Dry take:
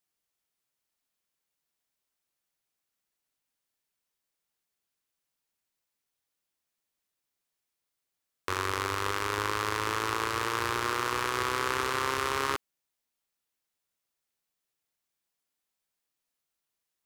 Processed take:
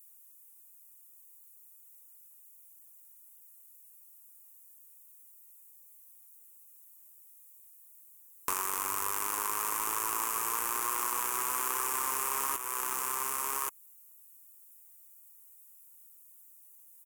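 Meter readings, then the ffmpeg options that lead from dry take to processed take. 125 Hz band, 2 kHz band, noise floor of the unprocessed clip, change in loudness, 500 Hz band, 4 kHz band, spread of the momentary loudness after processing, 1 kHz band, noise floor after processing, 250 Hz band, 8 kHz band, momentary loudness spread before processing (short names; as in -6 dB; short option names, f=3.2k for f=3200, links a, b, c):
-19.5 dB, -8.0 dB, -85 dBFS, -1.0 dB, -11.0 dB, -8.5 dB, 3 LU, -3.0 dB, -57 dBFS, -10.5 dB, +8.5 dB, 3 LU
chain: -af "aeval=exprs='if(lt(val(0),0),0.708*val(0),val(0))':c=same,aecho=1:1:1126:0.299,aexciter=amount=12.4:drive=9.3:freq=6.8k,equalizer=f=1k:t=o:w=0.67:g=10,equalizer=f=2.5k:t=o:w=0.67:g=6,equalizer=f=16k:t=o:w=0.67:g=8,acompressor=threshold=-21dB:ratio=12,flanger=delay=1.6:depth=3.7:regen=-49:speed=1.1:shape=triangular,highpass=f=230:p=1,highshelf=f=5.4k:g=-7.5,asoftclip=type=tanh:threshold=-23dB,volume=7dB"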